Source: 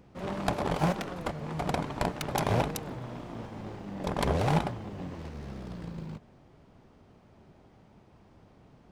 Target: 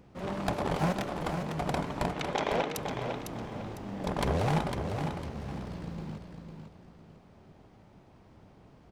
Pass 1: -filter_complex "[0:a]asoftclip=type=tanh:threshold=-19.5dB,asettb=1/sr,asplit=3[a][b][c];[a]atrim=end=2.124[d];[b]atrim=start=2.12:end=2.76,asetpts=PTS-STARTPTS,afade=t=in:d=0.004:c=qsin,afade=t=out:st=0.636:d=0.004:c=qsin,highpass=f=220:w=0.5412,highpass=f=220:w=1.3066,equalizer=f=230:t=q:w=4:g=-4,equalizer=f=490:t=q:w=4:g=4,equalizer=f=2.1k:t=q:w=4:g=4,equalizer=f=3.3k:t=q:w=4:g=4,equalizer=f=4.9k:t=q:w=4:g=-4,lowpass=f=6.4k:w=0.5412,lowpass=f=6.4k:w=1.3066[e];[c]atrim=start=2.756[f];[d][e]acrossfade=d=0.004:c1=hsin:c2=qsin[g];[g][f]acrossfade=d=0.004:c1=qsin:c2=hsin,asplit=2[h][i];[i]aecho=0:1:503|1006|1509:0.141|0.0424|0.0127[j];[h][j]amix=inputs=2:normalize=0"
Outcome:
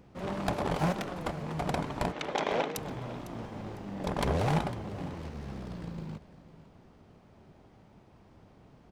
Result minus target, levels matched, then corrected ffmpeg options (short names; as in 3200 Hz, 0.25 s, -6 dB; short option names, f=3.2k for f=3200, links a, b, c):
echo-to-direct -10.5 dB
-filter_complex "[0:a]asoftclip=type=tanh:threshold=-19.5dB,asettb=1/sr,asplit=3[a][b][c];[a]atrim=end=2.124[d];[b]atrim=start=2.12:end=2.76,asetpts=PTS-STARTPTS,afade=t=in:d=0.004:c=qsin,afade=t=out:st=0.636:d=0.004:c=qsin,highpass=f=220:w=0.5412,highpass=f=220:w=1.3066,equalizer=f=230:t=q:w=4:g=-4,equalizer=f=490:t=q:w=4:g=4,equalizer=f=2.1k:t=q:w=4:g=4,equalizer=f=3.3k:t=q:w=4:g=4,equalizer=f=4.9k:t=q:w=4:g=-4,lowpass=f=6.4k:w=0.5412,lowpass=f=6.4k:w=1.3066[e];[c]atrim=start=2.756[f];[d][e]acrossfade=d=0.004:c1=hsin:c2=qsin[g];[g][f]acrossfade=d=0.004:c1=qsin:c2=hsin,asplit=2[h][i];[i]aecho=0:1:503|1006|1509|2012:0.473|0.142|0.0426|0.0128[j];[h][j]amix=inputs=2:normalize=0"